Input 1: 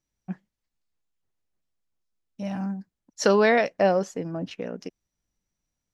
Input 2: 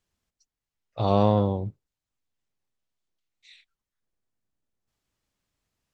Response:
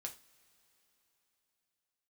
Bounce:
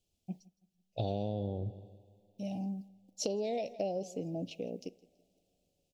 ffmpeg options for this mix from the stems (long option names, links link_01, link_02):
-filter_complex "[0:a]acrusher=bits=11:mix=0:aa=0.000001,volume=-7.5dB,asplit=3[link_01][link_02][link_03];[link_02]volume=-9dB[link_04];[link_03]volume=-22dB[link_05];[1:a]volume=-1dB,asplit=3[link_06][link_07][link_08];[link_07]volume=-12.5dB[link_09];[link_08]volume=-21dB[link_10];[2:a]atrim=start_sample=2205[link_11];[link_04][link_09]amix=inputs=2:normalize=0[link_12];[link_12][link_11]afir=irnorm=-1:irlink=0[link_13];[link_05][link_10]amix=inputs=2:normalize=0,aecho=0:1:165|330|495|660|825:1|0.37|0.137|0.0507|0.0187[link_14];[link_01][link_06][link_13][link_14]amix=inputs=4:normalize=0,asuperstop=centerf=1400:order=8:qfactor=0.78,acompressor=threshold=-31dB:ratio=12"